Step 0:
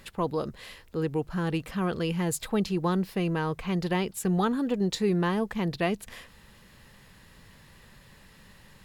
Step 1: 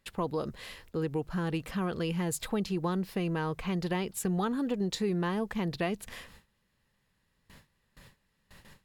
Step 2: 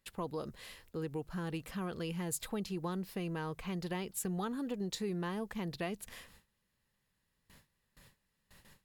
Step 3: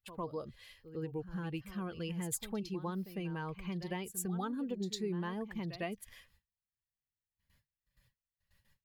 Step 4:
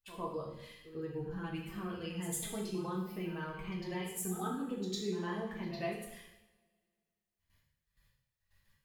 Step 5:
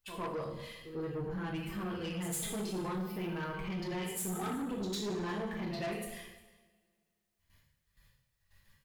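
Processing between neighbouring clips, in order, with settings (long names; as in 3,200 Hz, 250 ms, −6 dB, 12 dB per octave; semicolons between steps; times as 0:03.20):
noise gate with hold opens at −42 dBFS; downward compressor 2 to 1, threshold −30 dBFS, peak gain reduction 5.5 dB
high-shelf EQ 6,800 Hz +7.5 dB; level −7 dB
spectral dynamics exaggerated over time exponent 1.5; echo ahead of the sound 103 ms −13 dB; level +1.5 dB
coupled-rooms reverb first 0.79 s, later 2.1 s, from −22 dB, DRR −3.5 dB; level −4 dB
soft clipping −39 dBFS, distortion −10 dB; single-tap delay 354 ms −21.5 dB; level +6 dB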